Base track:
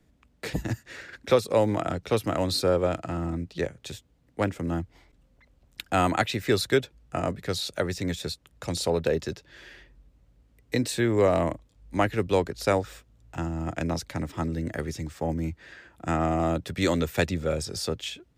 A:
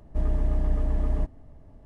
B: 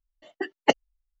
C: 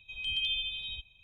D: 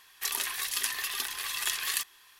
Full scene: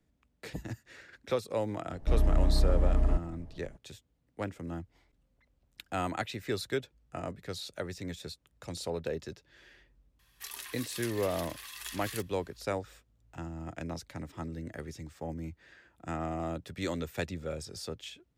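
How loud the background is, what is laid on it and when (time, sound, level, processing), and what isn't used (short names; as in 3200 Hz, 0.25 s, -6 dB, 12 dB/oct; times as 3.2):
base track -10 dB
1.92 add A -0.5 dB
10.19 add D -11.5 dB
not used: B, C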